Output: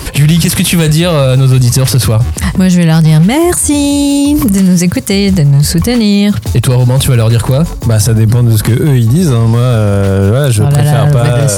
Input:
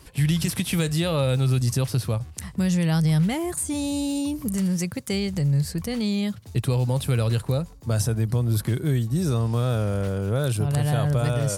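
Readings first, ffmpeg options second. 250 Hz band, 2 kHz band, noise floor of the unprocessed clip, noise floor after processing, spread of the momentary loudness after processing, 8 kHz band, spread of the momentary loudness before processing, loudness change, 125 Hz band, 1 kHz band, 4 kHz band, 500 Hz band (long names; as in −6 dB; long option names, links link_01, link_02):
+16.0 dB, +15.5 dB, −43 dBFS, −17 dBFS, 3 LU, +17.0 dB, 5 LU, +15.5 dB, +15.0 dB, +15.0 dB, +16.0 dB, +15.0 dB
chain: -af "asoftclip=type=hard:threshold=-16.5dB,alimiter=level_in=28.5dB:limit=-1dB:release=50:level=0:latency=1,volume=-1dB"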